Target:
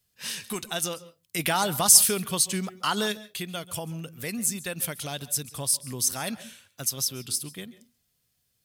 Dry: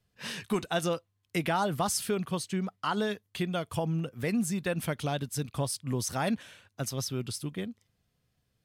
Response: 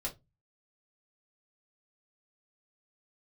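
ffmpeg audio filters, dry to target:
-filter_complex "[0:a]asplit=3[s0][s1][s2];[s0]afade=t=out:st=1.38:d=0.02[s3];[s1]acontrast=53,afade=t=in:st=1.38:d=0.02,afade=t=out:st=3.11:d=0.02[s4];[s2]afade=t=in:st=3.11:d=0.02[s5];[s3][s4][s5]amix=inputs=3:normalize=0,crystalizer=i=5.5:c=0,asplit=2[s6][s7];[1:a]atrim=start_sample=2205,adelay=133[s8];[s7][s8]afir=irnorm=-1:irlink=0,volume=0.119[s9];[s6][s9]amix=inputs=2:normalize=0,volume=0.531"

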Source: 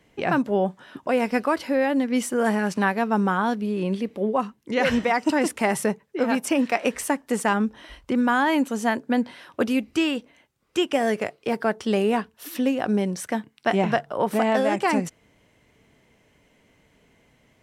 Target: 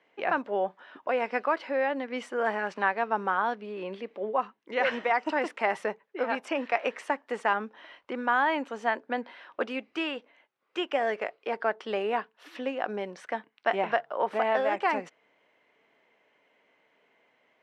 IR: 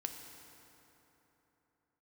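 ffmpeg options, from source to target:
-af "highpass=520,lowpass=2700,volume=0.794"

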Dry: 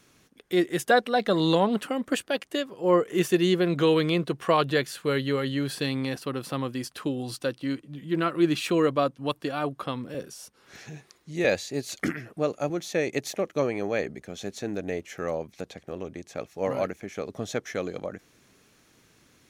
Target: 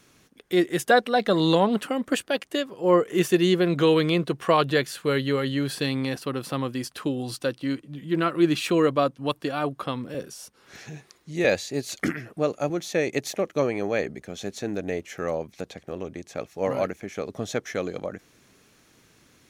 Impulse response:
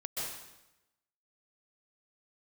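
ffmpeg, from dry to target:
-af "volume=1.26"

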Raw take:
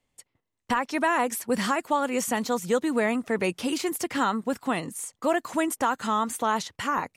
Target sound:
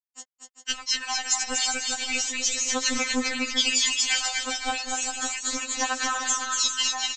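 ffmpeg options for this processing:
-filter_complex "[0:a]highpass=96,tiltshelf=f=790:g=-9.5,dynaudnorm=f=210:g=11:m=2.82,alimiter=limit=0.2:level=0:latency=1:release=210,acompressor=threshold=0.0398:ratio=8,crystalizer=i=6:c=0,acrusher=bits=5:mix=0:aa=0.000001,tremolo=f=250:d=1,aphaser=in_gain=1:out_gain=1:delay=1.4:decay=0.66:speed=0.34:type=sinusoidal,asplit=2[s0][s1];[s1]aecho=0:1:240|396|497.4|563.3|606.2:0.631|0.398|0.251|0.158|0.1[s2];[s0][s2]amix=inputs=2:normalize=0,aresample=16000,aresample=44100,afftfilt=real='re*3.46*eq(mod(b,12),0)':imag='im*3.46*eq(mod(b,12),0)':win_size=2048:overlap=0.75"

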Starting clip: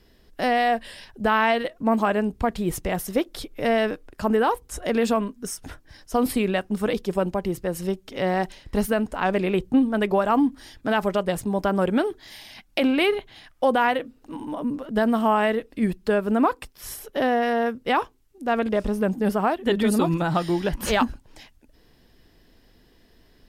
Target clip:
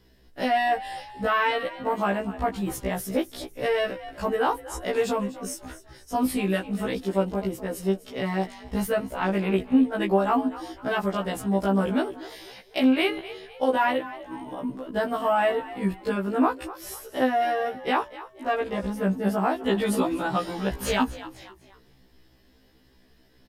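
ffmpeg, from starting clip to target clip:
-filter_complex "[0:a]asplit=4[s0][s1][s2][s3];[s1]adelay=249,afreqshift=59,volume=0.158[s4];[s2]adelay=498,afreqshift=118,volume=0.0603[s5];[s3]adelay=747,afreqshift=177,volume=0.0229[s6];[s0][s4][s5][s6]amix=inputs=4:normalize=0,afftfilt=real='re*1.73*eq(mod(b,3),0)':imag='im*1.73*eq(mod(b,3),0)':win_size=2048:overlap=0.75"

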